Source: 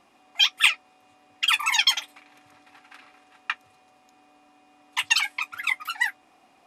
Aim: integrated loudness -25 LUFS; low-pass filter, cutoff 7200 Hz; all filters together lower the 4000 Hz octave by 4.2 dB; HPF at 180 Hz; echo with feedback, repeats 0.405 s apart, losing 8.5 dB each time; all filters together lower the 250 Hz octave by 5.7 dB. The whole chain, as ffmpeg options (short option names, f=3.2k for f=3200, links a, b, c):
-af "highpass=180,lowpass=7.2k,equalizer=f=250:t=o:g=-6,equalizer=f=4k:t=o:g=-5.5,aecho=1:1:405|810|1215|1620:0.376|0.143|0.0543|0.0206,volume=1.5dB"